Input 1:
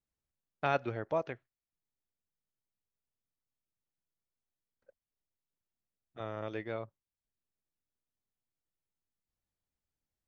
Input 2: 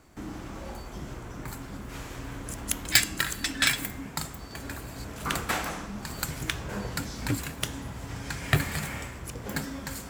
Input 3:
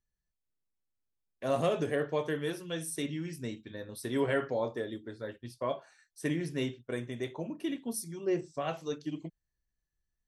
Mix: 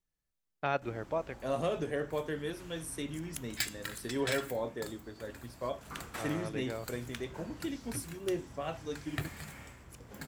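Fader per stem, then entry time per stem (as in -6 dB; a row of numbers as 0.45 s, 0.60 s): -1.5 dB, -13.5 dB, -3.5 dB; 0.00 s, 0.65 s, 0.00 s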